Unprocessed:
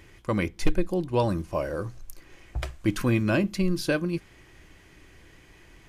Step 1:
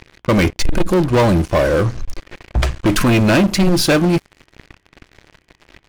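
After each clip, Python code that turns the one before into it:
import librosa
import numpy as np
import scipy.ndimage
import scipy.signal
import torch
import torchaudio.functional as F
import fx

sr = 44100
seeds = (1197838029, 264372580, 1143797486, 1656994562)

y = fx.env_lowpass(x, sr, base_hz=2900.0, full_db=-22.5)
y = fx.leveller(y, sr, passes=5)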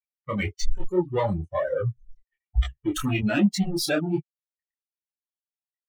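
y = fx.bin_expand(x, sr, power=3.0)
y = fx.detune_double(y, sr, cents=40)
y = y * 10.0 ** (-1.0 / 20.0)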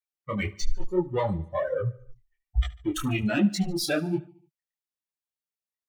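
y = fx.echo_feedback(x, sr, ms=73, feedback_pct=53, wet_db=-20.5)
y = y * 10.0 ** (-2.0 / 20.0)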